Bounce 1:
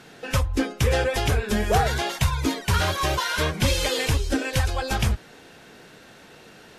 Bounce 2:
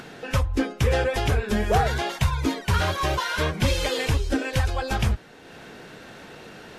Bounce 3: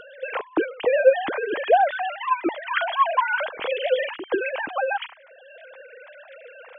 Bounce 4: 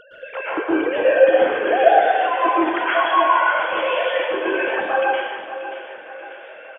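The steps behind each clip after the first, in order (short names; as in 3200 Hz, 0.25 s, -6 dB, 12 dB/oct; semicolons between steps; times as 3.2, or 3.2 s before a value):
high shelf 4100 Hz -6.5 dB; upward compressor, threshold -35 dBFS
sine-wave speech
feedback echo 0.584 s, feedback 46%, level -12 dB; plate-style reverb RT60 1.4 s, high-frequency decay 0.8×, pre-delay 0.105 s, DRR -9 dB; gain -4.5 dB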